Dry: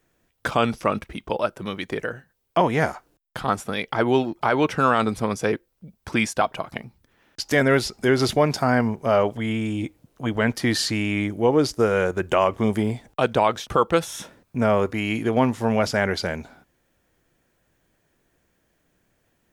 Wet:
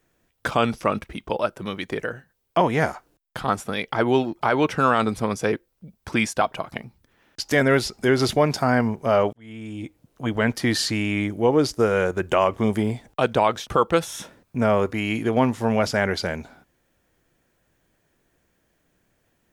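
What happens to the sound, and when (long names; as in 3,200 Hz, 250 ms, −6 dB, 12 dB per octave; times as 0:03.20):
0:09.33–0:10.27: fade in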